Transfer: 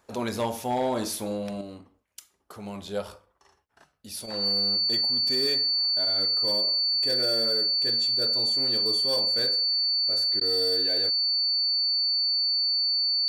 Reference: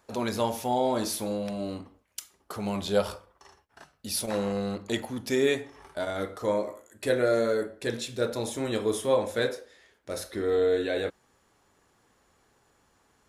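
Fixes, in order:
clipped peaks rebuilt −20 dBFS
notch filter 4,500 Hz, Q 30
repair the gap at 0:10.40, 10 ms
level 0 dB, from 0:01.61 +6.5 dB

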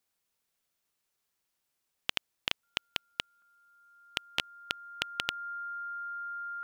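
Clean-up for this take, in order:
notch filter 1,400 Hz, Q 30
repair the gap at 0:03.42/0:04.71, 2.2 ms

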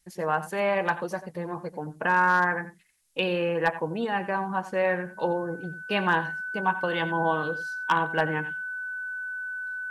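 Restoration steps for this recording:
clipped peaks rebuilt −12 dBFS
notch filter 1,500 Hz, Q 30
downward expander −35 dBFS, range −21 dB
echo removal 89 ms −14.5 dB

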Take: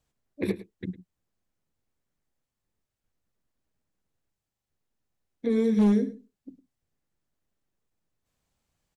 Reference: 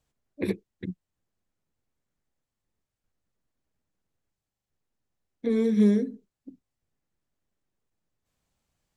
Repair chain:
clipped peaks rebuilt −16 dBFS
echo removal 106 ms −16.5 dB

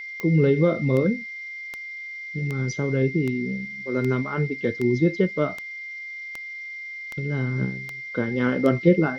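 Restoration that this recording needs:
click removal
notch filter 2,100 Hz, Q 30
noise reduction from a noise print 30 dB

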